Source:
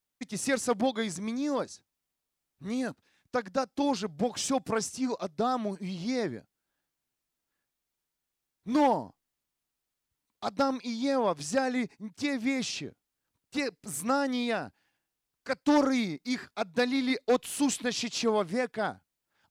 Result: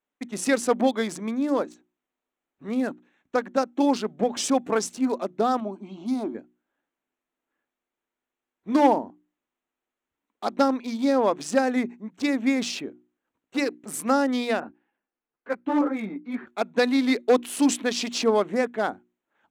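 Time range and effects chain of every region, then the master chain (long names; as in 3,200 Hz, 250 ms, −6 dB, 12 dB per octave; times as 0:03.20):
0:05.60–0:06.35: high-frequency loss of the air 53 metres + phaser with its sweep stopped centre 490 Hz, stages 6
0:14.60–0:16.47: high-frequency loss of the air 260 metres + string-ensemble chorus
whole clip: adaptive Wiener filter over 9 samples; low shelf with overshoot 180 Hz −11.5 dB, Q 1.5; mains-hum notches 60/120/180/240/300/360 Hz; level +5 dB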